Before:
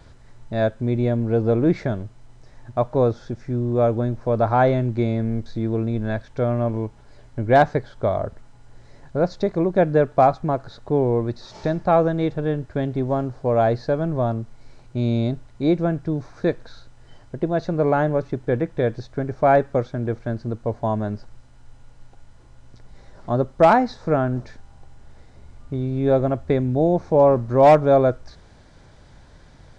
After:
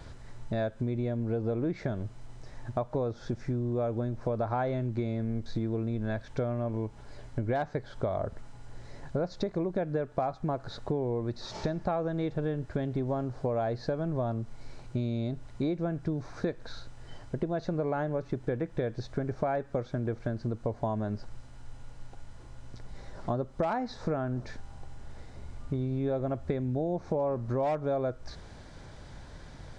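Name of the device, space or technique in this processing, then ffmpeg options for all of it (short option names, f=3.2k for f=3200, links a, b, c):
serial compression, peaks first: -af "acompressor=threshold=-25dB:ratio=6,acompressor=threshold=-35dB:ratio=1.5,volume=1.5dB"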